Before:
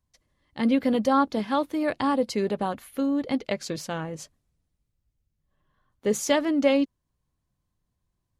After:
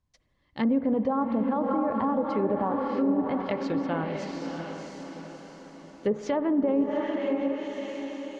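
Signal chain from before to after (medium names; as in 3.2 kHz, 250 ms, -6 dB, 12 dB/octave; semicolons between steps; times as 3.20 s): Bessel low-pass 5.5 kHz, order 2; echo that smears into a reverb 667 ms, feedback 47%, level -6 dB; dynamic bell 1 kHz, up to +4 dB, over -37 dBFS, Q 2.5; peak limiter -16.5 dBFS, peak gain reduction 9 dB; spring tank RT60 3.4 s, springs 51 ms, chirp 50 ms, DRR 10.5 dB; low-pass that closes with the level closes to 910 Hz, closed at -21 dBFS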